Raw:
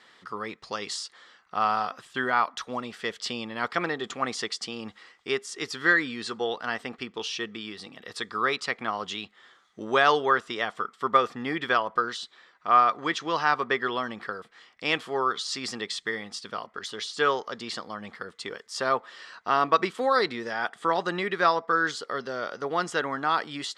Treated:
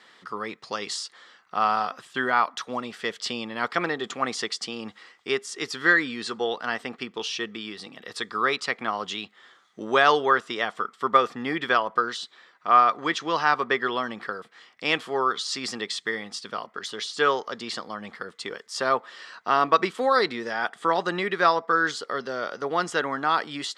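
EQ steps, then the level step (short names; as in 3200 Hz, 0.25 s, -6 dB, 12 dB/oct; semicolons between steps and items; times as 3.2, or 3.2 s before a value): HPF 120 Hz; +2.0 dB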